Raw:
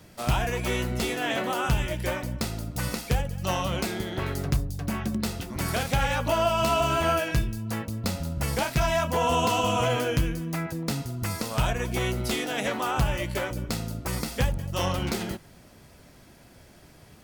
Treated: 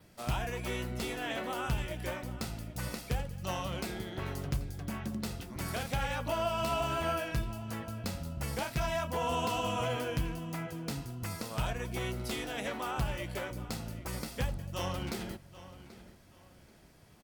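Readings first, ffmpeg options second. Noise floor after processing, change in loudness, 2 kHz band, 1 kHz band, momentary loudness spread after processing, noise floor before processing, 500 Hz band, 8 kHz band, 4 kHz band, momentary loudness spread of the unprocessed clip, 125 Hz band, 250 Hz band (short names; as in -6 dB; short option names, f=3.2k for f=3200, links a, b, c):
-58 dBFS, -8.5 dB, -8.5 dB, -8.5 dB, 8 LU, -52 dBFS, -8.5 dB, -9.0 dB, -8.5 dB, 8 LU, -8.5 dB, -8.5 dB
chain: -filter_complex "[0:a]adynamicequalizer=threshold=0.002:dfrequency=6600:dqfactor=5.3:tfrequency=6600:tqfactor=5.3:attack=5:release=100:ratio=0.375:range=2:mode=cutabove:tftype=bell,asplit=2[a][b];[b]adelay=784,lowpass=f=5k:p=1,volume=-15.5dB,asplit=2[c][d];[d]adelay=784,lowpass=f=5k:p=1,volume=0.32,asplit=2[e][f];[f]adelay=784,lowpass=f=5k:p=1,volume=0.32[g];[c][e][g]amix=inputs=3:normalize=0[h];[a][h]amix=inputs=2:normalize=0,volume=-8.5dB"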